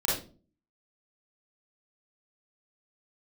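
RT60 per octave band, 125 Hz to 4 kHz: 0.60, 0.60, 0.45, 0.30, 0.30, 0.30 s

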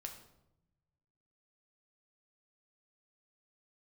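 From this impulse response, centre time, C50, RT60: 20 ms, 8.0 dB, 0.85 s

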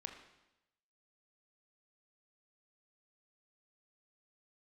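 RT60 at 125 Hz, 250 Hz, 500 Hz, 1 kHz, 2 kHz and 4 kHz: 1.0, 0.95, 0.90, 0.90, 0.90, 0.90 s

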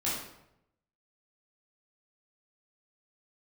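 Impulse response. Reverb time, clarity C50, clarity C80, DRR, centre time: 0.80 s, 1.0 dB, 4.5 dB, -8.5 dB, 58 ms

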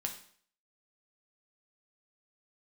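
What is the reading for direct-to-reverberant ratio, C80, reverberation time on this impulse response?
2.5 dB, 13.0 dB, 0.55 s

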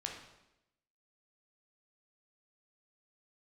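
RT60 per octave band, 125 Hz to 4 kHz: 0.90, 1.0, 0.95, 0.85, 0.85, 0.80 s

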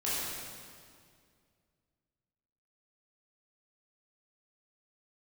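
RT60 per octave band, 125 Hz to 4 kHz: 2.8, 2.5, 2.3, 2.0, 1.9, 1.8 s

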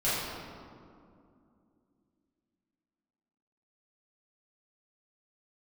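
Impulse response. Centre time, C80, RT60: 0.131 s, 0.0 dB, 2.4 s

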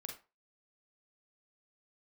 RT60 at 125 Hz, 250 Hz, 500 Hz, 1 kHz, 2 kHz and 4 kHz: 0.30, 0.25, 0.30, 0.30, 0.25, 0.20 s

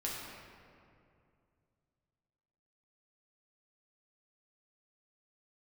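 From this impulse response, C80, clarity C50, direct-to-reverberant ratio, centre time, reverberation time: 1.0 dB, -0.5 dB, -5.0 dB, 0.118 s, 2.4 s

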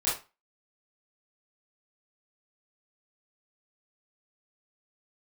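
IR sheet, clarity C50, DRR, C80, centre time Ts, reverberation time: 5.5 dB, -11.0 dB, 13.5 dB, 38 ms, 0.30 s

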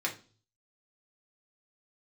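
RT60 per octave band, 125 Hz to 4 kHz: 0.80, 0.50, 0.40, 0.35, 0.30, 0.40 s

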